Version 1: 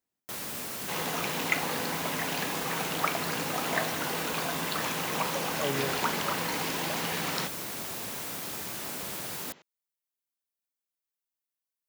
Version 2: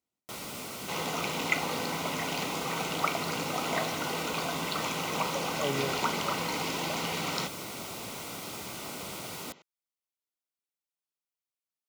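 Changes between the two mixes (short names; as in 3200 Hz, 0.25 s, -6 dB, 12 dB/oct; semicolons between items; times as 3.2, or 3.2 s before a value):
first sound: add high shelf 9600 Hz -9 dB; master: add Butterworth band-stop 1700 Hz, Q 5.1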